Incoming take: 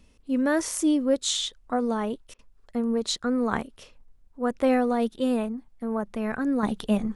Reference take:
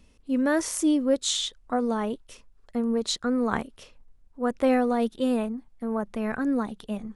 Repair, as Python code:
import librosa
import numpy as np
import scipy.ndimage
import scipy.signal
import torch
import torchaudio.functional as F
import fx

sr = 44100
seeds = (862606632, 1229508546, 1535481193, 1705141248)

y = fx.fix_interpolate(x, sr, at_s=(2.34,), length_ms=48.0)
y = fx.fix_level(y, sr, at_s=6.63, step_db=-8.5)